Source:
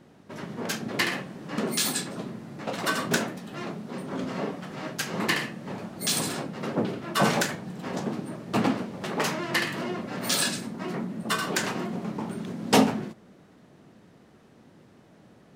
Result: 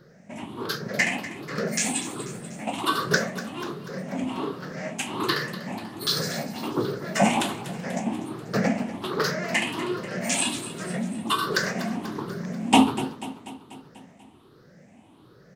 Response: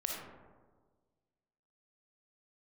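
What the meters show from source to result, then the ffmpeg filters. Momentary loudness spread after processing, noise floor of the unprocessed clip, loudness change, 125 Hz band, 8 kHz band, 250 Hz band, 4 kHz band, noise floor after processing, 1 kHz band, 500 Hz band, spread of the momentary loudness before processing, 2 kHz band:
12 LU, -56 dBFS, +1.5 dB, +1.0 dB, +0.5 dB, +2.0 dB, +1.5 dB, -54 dBFS, +3.0 dB, +1.5 dB, 12 LU, +2.0 dB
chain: -filter_complex "[0:a]afftfilt=real='re*pow(10,16/40*sin(2*PI*(0.59*log(max(b,1)*sr/1024/100)/log(2)-(1.3)*(pts-256)/sr)))':imag='im*pow(10,16/40*sin(2*PI*(0.59*log(max(b,1)*sr/1024/100)/log(2)-(1.3)*(pts-256)/sr)))':win_size=1024:overlap=0.75,asplit=2[a][b];[b]aecho=0:1:244|488|732|976|1220|1464:0.178|0.105|0.0619|0.0365|0.0215|0.0127[c];[a][c]amix=inputs=2:normalize=0,acrossover=split=8700[d][e];[e]acompressor=threshold=-37dB:ratio=4:attack=1:release=60[f];[d][f]amix=inputs=2:normalize=0,volume=-1.5dB"

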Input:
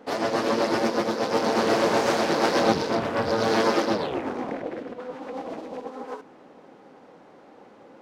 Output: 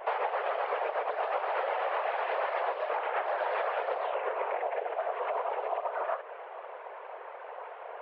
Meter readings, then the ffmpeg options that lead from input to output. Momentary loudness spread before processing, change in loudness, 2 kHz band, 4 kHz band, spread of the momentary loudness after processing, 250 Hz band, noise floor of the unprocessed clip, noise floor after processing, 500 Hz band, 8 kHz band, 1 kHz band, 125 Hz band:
15 LU, -7.5 dB, -5.5 dB, -16.0 dB, 13 LU, under -30 dB, -51 dBFS, -45 dBFS, -7.0 dB, under -40 dB, -3.0 dB, under -40 dB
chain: -af "acontrast=71,afftfilt=real='hypot(re,im)*cos(2*PI*random(0))':imag='hypot(re,im)*sin(2*PI*random(1))':win_size=512:overlap=0.75,highpass=f=290:t=q:w=0.5412,highpass=f=290:t=q:w=1.307,lowpass=f=2.8k:t=q:w=0.5176,lowpass=f=2.8k:t=q:w=0.7071,lowpass=f=2.8k:t=q:w=1.932,afreqshift=170,acompressor=threshold=-35dB:ratio=12,volume=7dB"

